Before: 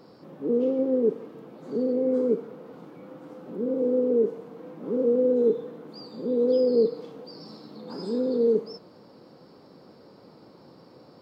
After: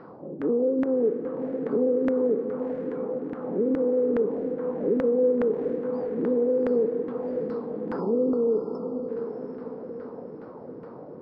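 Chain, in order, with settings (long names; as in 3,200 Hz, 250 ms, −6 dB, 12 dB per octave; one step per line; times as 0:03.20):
auto-filter low-pass saw down 2.4 Hz 290–1,700 Hz
in parallel at +2 dB: brickwall limiter −17.5 dBFS, peak gain reduction 10 dB
on the sum: downward compressor 3 to 1, threshold −20 dBFS, peak gain reduction 8.5 dB
feedback delay with all-pass diffusion 698 ms, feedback 52%, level −8 dB
gain on a spectral selection 0:08.00–0:09.09, 1,400–4,200 Hz −28 dB
level −2.5 dB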